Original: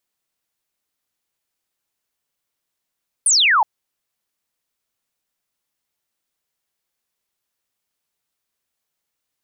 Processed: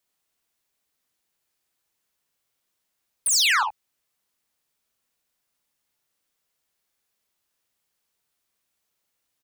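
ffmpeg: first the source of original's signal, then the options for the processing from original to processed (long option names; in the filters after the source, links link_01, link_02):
-f lavfi -i "aevalsrc='0.266*clip(t/0.002,0,1)*clip((0.37-t)/0.002,0,1)*sin(2*PI*10000*0.37/log(800/10000)*(exp(log(800/10000)*t/0.37)-1))':duration=0.37:sample_rate=44100"
-filter_complex "[0:a]acrossover=split=130|1200[link_01][link_02][link_03];[link_02]acompressor=threshold=-28dB:ratio=6[link_04];[link_01][link_04][link_03]amix=inputs=3:normalize=0,asoftclip=type=tanh:threshold=-20dB,aecho=1:1:45|59|74:0.376|0.531|0.335"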